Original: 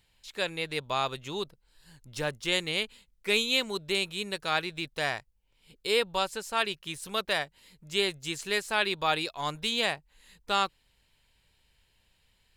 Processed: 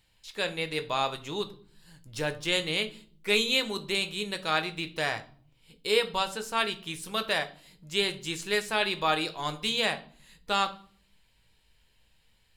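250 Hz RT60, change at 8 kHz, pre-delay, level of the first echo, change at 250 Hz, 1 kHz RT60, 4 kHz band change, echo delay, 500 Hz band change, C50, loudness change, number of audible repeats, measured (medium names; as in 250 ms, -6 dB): 0.80 s, +0.5 dB, 6 ms, no echo, +2.0 dB, 0.45 s, +1.0 dB, no echo, +1.0 dB, 15.5 dB, +1.0 dB, no echo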